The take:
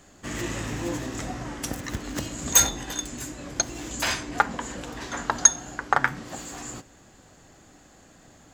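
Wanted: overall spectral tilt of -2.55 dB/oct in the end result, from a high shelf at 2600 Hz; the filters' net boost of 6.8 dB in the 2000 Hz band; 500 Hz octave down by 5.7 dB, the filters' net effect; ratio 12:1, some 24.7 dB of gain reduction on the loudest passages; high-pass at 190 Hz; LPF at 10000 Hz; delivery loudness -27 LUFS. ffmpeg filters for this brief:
-af "highpass=190,lowpass=10k,equalizer=f=500:t=o:g=-8.5,equalizer=f=2k:t=o:g=6.5,highshelf=f=2.6k:g=7.5,acompressor=threshold=-30dB:ratio=12,volume=6.5dB"

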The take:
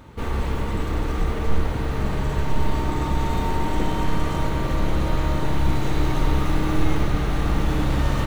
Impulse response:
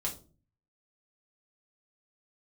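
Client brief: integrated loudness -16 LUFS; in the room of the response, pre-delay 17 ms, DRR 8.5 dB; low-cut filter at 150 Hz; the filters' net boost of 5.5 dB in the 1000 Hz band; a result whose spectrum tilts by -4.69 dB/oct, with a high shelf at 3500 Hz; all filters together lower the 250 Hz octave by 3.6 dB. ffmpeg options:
-filter_complex "[0:a]highpass=150,equalizer=f=250:t=o:g=-4.5,equalizer=f=1k:t=o:g=7,highshelf=f=3.5k:g=-4.5,asplit=2[a][b];[1:a]atrim=start_sample=2205,adelay=17[c];[b][c]afir=irnorm=-1:irlink=0,volume=-11dB[d];[a][d]amix=inputs=2:normalize=0,volume=10dB"

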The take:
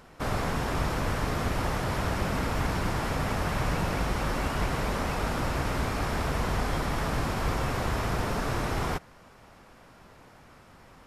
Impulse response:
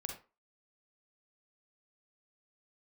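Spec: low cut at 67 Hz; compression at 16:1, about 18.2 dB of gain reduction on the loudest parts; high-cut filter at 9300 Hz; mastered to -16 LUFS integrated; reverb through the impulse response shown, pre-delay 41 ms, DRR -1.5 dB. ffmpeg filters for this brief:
-filter_complex "[0:a]highpass=67,lowpass=9.3k,acompressor=threshold=-44dB:ratio=16,asplit=2[a][b];[1:a]atrim=start_sample=2205,adelay=41[c];[b][c]afir=irnorm=-1:irlink=0,volume=2.5dB[d];[a][d]amix=inputs=2:normalize=0,volume=28.5dB"

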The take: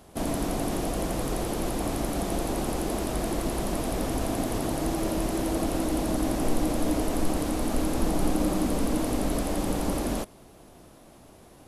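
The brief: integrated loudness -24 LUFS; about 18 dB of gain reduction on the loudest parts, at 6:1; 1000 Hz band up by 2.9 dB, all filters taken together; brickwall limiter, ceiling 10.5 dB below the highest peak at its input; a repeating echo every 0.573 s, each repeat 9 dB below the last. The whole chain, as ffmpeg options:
-af "equalizer=f=1k:t=o:g=4,acompressor=threshold=-39dB:ratio=6,alimiter=level_in=12.5dB:limit=-24dB:level=0:latency=1,volume=-12.5dB,aecho=1:1:573|1146|1719|2292:0.355|0.124|0.0435|0.0152,volume=22dB"

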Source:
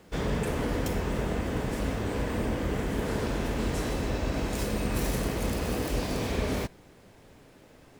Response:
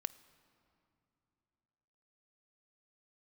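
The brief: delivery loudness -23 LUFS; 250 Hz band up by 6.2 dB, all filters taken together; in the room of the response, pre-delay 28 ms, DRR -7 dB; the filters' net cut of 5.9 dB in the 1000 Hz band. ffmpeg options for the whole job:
-filter_complex "[0:a]equalizer=f=250:t=o:g=8,equalizer=f=1k:t=o:g=-8.5,asplit=2[a][b];[1:a]atrim=start_sample=2205,adelay=28[c];[b][c]afir=irnorm=-1:irlink=0,volume=8.5dB[d];[a][d]amix=inputs=2:normalize=0,volume=-3dB"

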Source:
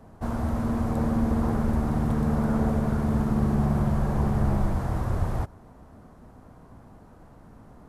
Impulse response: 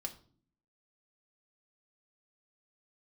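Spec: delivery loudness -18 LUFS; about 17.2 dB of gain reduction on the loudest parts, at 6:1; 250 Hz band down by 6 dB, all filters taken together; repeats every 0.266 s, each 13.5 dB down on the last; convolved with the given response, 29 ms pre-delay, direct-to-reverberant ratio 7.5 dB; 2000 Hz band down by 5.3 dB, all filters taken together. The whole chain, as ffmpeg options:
-filter_complex "[0:a]equalizer=f=250:t=o:g=-7.5,equalizer=f=2k:t=o:g=-7.5,acompressor=threshold=-40dB:ratio=6,aecho=1:1:266|532:0.211|0.0444,asplit=2[a][b];[1:a]atrim=start_sample=2205,adelay=29[c];[b][c]afir=irnorm=-1:irlink=0,volume=-6dB[d];[a][d]amix=inputs=2:normalize=0,volume=26.5dB"

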